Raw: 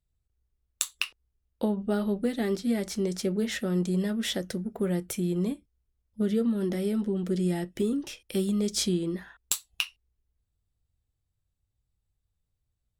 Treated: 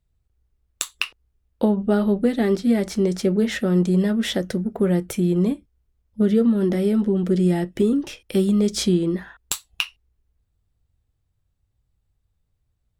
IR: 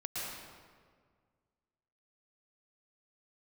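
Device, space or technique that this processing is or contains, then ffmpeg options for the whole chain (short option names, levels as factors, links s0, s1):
behind a face mask: -af "highshelf=f=3200:g=-8,volume=2.66"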